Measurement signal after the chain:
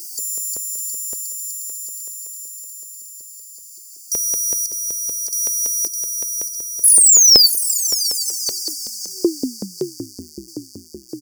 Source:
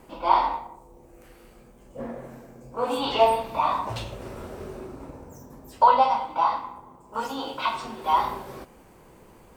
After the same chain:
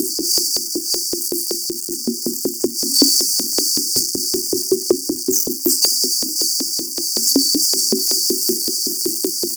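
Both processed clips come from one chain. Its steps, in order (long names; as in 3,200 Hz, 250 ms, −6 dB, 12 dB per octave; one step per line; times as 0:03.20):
low-shelf EQ 250 Hz +5.5 dB
comb filter 3.3 ms, depth 67%
repeating echo 609 ms, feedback 33%, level −12 dB
power curve on the samples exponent 0.35
in parallel at −2.5 dB: downward compressor, threshold −20 dBFS
on the sum: brick-wall band-stop 380–4,500 Hz
auto-filter high-pass saw up 5.3 Hz 450–4,300 Hz
soft clipping −5.5 dBFS
level +6.5 dB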